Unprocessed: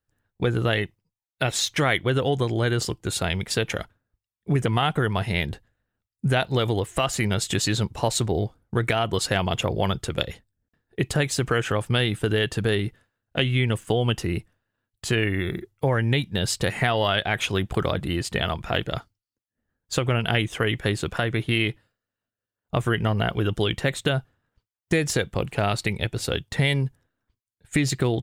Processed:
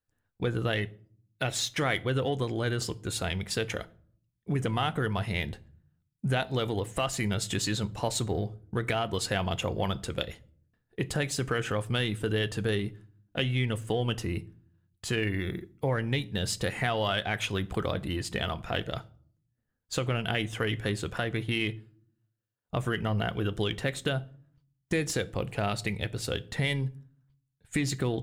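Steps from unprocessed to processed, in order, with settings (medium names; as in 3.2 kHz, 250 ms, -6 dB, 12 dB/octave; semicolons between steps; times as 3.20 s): in parallel at -10 dB: saturation -24 dBFS, distortion -8 dB; on the sum: reverberation RT60 0.55 s, pre-delay 4 ms, DRR 13.5 dB; trim -7.5 dB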